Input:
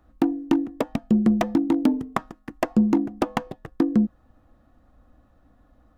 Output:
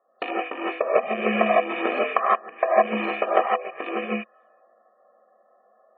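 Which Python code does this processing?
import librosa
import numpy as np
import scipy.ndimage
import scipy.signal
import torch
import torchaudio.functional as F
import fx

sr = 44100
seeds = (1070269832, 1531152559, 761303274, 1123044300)

y = fx.rattle_buzz(x, sr, strikes_db=-31.0, level_db=-19.0)
y = fx.env_lowpass(y, sr, base_hz=860.0, full_db=-19.0)
y = scipy.signal.sosfilt(scipy.signal.butter(4, 360.0, 'highpass', fs=sr, output='sos'), y)
y = y + 0.97 * np.pad(y, (int(1.7 * sr / 1000.0), 0))[:len(y)]
y = fx.rev_gated(y, sr, seeds[0], gate_ms=190, shape='rising', drr_db=-8.0)
y = fx.env_lowpass_down(y, sr, base_hz=1400.0, full_db=-23.0)
y = fx.cheby_harmonics(y, sr, harmonics=(7,), levels_db=(-30,), full_scale_db=-4.5)
y = fx.tilt_eq(y, sr, slope=2.0)
y = fx.spec_gate(y, sr, threshold_db=-30, keep='strong')
y = fx.band_squash(y, sr, depth_pct=70, at=(0.96, 2.55))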